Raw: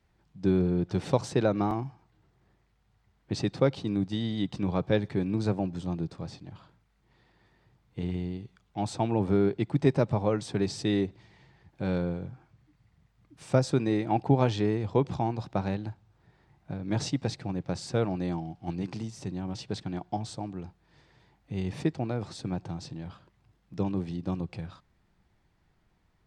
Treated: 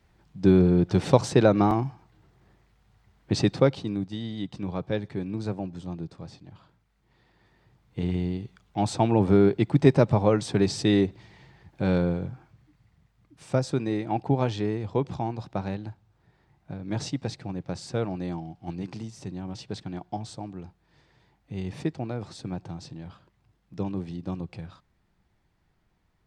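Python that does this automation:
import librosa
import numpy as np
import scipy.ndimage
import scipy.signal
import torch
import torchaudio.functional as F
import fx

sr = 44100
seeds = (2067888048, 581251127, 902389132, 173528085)

y = fx.gain(x, sr, db=fx.line((3.46, 6.5), (4.09, -3.0), (6.43, -3.0), (8.29, 5.5), (12.25, 5.5), (13.49, -1.0)))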